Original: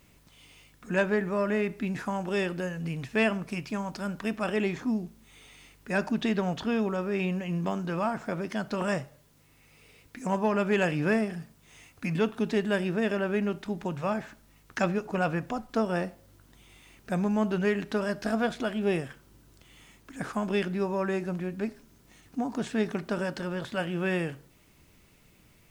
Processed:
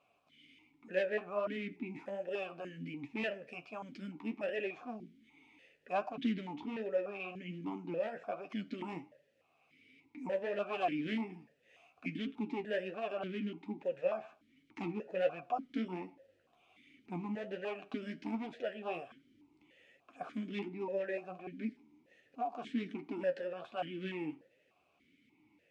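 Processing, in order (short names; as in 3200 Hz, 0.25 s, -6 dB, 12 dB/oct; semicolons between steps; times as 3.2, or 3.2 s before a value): one-sided fold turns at -25 dBFS; flange 1.3 Hz, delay 6.6 ms, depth 7.7 ms, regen +39%; vowel sequencer 3.4 Hz; gain +7.5 dB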